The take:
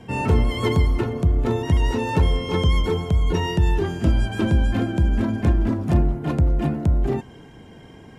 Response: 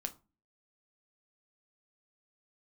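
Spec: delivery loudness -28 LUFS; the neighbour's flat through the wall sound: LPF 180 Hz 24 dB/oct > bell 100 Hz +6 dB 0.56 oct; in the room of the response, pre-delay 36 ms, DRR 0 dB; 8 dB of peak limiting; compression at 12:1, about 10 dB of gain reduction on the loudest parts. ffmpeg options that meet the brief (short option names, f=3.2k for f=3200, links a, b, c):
-filter_complex "[0:a]acompressor=threshold=-23dB:ratio=12,alimiter=limit=-21.5dB:level=0:latency=1,asplit=2[a][b];[1:a]atrim=start_sample=2205,adelay=36[c];[b][c]afir=irnorm=-1:irlink=0,volume=1dB[d];[a][d]amix=inputs=2:normalize=0,lowpass=f=180:w=0.5412,lowpass=f=180:w=1.3066,equalizer=f=100:t=o:w=0.56:g=6,volume=0.5dB"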